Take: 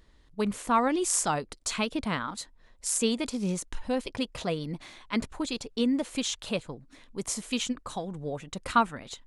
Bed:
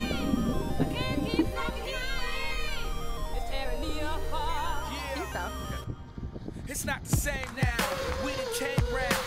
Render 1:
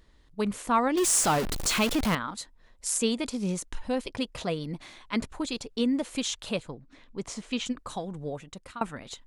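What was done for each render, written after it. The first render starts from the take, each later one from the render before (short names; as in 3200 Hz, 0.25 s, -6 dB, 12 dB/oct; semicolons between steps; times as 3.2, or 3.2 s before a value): 0.97–2.15 zero-crossing step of -25 dBFS; 6.71–7.66 air absorption 96 m; 8.26–8.81 fade out, to -24 dB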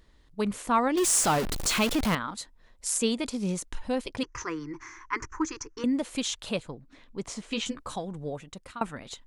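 4.23–5.84 EQ curve 130 Hz 0 dB, 210 Hz -27 dB, 320 Hz +6 dB, 660 Hz -20 dB, 990 Hz +8 dB, 1900 Hz +7 dB, 3800 Hz -20 dB, 6100 Hz +12 dB, 8600 Hz -16 dB, 15000 Hz -30 dB; 7.47–7.96 doubler 14 ms -4 dB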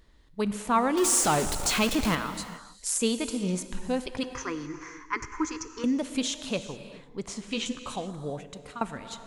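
non-linear reverb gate 0.45 s flat, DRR 10 dB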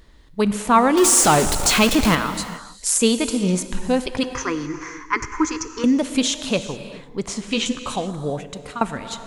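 gain +9 dB; limiter -1 dBFS, peak gain reduction 1.5 dB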